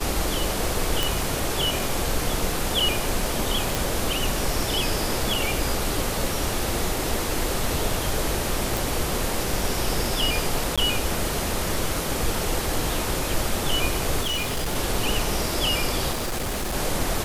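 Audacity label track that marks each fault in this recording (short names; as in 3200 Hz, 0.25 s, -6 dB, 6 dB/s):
1.030000	1.030000	pop
3.750000	3.750000	pop
8.770000	8.770000	pop
10.760000	10.780000	gap 16 ms
14.210000	14.760000	clipped -22.5 dBFS
16.110000	16.750000	clipped -24 dBFS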